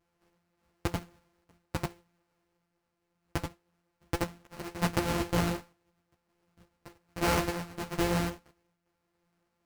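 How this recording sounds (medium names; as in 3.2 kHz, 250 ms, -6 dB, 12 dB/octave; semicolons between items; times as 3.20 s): a buzz of ramps at a fixed pitch in blocks of 256 samples; random-step tremolo; aliases and images of a low sample rate 3.5 kHz, jitter 20%; a shimmering, thickened sound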